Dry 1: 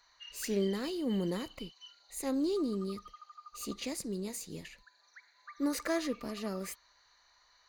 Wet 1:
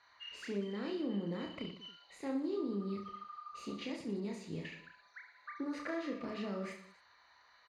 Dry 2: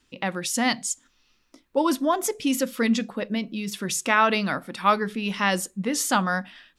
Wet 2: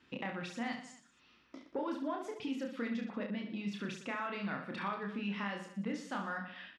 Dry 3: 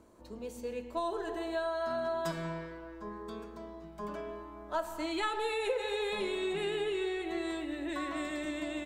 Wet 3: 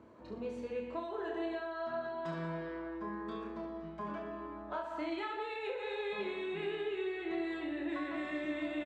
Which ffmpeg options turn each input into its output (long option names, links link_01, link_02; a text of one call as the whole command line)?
ffmpeg -i in.wav -filter_complex "[0:a]equalizer=frequency=510:width=0.34:gain=-4.5,acompressor=threshold=-41dB:ratio=12,asoftclip=type=tanh:threshold=-33.5dB,highpass=120,lowpass=2400,asplit=2[link_01][link_02];[link_02]aecho=0:1:30|69|119.7|185.6|271.3:0.631|0.398|0.251|0.158|0.1[link_03];[link_01][link_03]amix=inputs=2:normalize=0,volume=5.5dB" out.wav